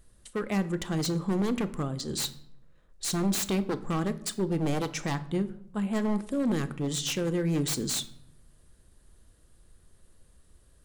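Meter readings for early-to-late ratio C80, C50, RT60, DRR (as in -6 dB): 19.0 dB, 16.0 dB, 0.75 s, 11.0 dB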